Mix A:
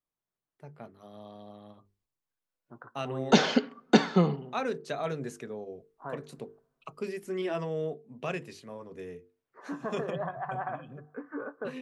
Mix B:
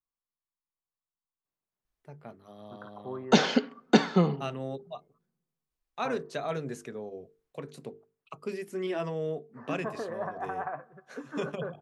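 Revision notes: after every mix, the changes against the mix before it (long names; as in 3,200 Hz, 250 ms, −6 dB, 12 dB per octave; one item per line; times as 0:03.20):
first voice: entry +1.45 s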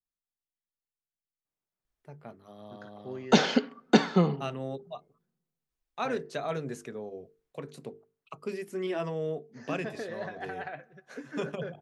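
second voice: remove low-pass with resonance 1,100 Hz, resonance Q 6.7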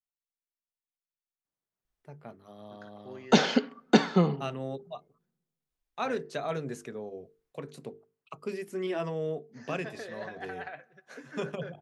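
second voice: add low-shelf EQ 480 Hz −9 dB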